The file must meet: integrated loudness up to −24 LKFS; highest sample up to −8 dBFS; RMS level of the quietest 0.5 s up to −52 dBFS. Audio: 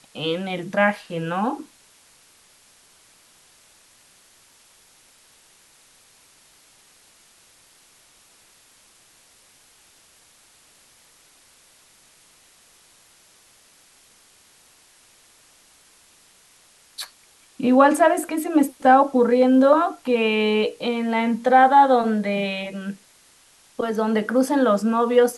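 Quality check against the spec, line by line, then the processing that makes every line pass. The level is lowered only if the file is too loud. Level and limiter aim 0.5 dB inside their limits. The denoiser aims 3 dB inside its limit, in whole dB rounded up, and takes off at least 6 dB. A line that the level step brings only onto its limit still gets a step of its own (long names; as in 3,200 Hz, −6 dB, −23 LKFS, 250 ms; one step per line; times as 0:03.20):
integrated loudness −19.5 LKFS: out of spec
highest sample −3.5 dBFS: out of spec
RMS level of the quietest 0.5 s −55 dBFS: in spec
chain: level −5 dB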